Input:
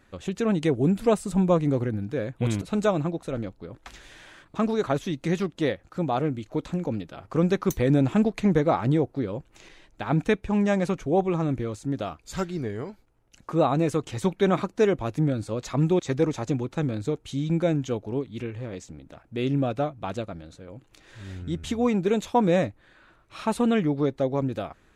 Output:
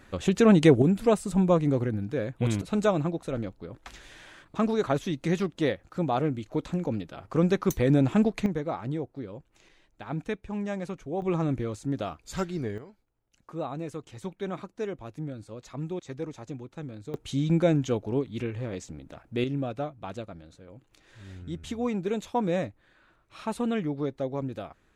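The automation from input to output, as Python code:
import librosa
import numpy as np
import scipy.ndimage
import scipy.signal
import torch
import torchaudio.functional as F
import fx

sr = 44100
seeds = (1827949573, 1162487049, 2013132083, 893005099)

y = fx.gain(x, sr, db=fx.steps((0.0, 6.0), (0.82, -1.0), (8.46, -9.5), (11.22, -1.5), (12.78, -12.0), (17.14, 1.0), (19.44, -6.0)))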